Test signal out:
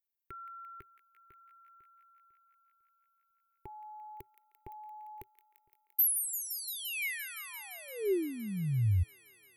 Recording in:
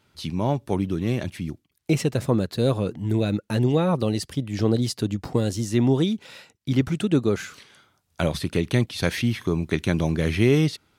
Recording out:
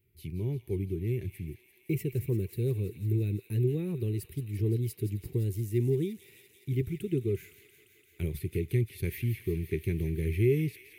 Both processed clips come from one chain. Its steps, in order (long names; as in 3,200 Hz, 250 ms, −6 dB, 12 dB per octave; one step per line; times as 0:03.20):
drawn EQ curve 110 Hz 0 dB, 260 Hz −15 dB, 390 Hz 0 dB, 580 Hz −29 dB, 1,400 Hz −29 dB, 2,200 Hz −7 dB, 3,400 Hz −19 dB, 5,700 Hz −22 dB, 8,800 Hz −11 dB, 14,000 Hz +7 dB
on a send: delay with a high-pass on its return 172 ms, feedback 84%, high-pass 1,600 Hz, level −10.5 dB
on the sum: level −2.5 dB